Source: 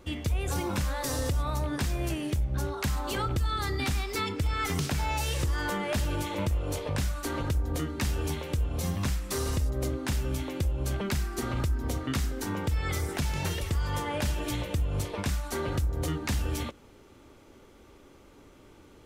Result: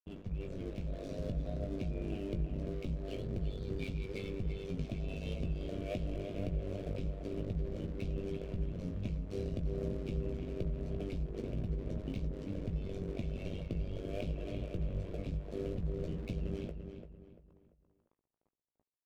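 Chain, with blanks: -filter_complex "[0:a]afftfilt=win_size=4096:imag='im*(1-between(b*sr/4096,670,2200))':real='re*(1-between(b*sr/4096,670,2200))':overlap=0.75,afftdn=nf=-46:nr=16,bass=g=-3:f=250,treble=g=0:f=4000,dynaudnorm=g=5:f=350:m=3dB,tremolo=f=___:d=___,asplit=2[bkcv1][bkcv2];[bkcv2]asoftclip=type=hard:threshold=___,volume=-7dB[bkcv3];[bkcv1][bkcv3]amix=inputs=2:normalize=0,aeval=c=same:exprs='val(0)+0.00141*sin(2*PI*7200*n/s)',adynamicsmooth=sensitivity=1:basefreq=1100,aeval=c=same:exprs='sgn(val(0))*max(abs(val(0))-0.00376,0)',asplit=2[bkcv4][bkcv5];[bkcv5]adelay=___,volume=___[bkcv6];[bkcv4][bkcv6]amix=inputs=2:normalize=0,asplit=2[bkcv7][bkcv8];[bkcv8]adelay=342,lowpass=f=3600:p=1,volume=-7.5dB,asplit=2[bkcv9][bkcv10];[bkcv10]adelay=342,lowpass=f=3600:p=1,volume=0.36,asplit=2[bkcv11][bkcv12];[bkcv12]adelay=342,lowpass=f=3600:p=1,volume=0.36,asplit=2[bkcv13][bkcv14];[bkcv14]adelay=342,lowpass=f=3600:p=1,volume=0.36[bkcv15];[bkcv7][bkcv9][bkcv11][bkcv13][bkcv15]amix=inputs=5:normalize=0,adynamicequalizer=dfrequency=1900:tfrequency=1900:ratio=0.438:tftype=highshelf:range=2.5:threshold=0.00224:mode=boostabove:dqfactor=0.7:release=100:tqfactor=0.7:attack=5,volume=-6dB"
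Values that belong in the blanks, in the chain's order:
97, 0.974, -35.5dB, 18, -8dB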